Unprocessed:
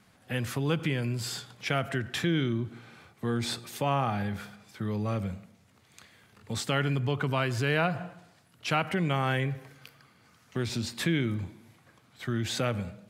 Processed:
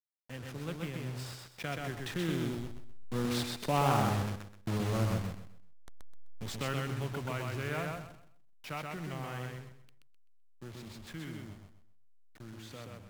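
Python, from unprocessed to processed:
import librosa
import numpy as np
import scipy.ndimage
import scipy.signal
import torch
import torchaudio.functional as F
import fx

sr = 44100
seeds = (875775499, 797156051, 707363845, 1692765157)

p1 = fx.delta_hold(x, sr, step_db=-32.0)
p2 = fx.doppler_pass(p1, sr, speed_mps=13, closest_m=13.0, pass_at_s=4.34)
p3 = p2 + fx.echo_feedback(p2, sr, ms=128, feedback_pct=28, wet_db=-3.0, dry=0)
y = fx.doppler_dist(p3, sr, depth_ms=0.28)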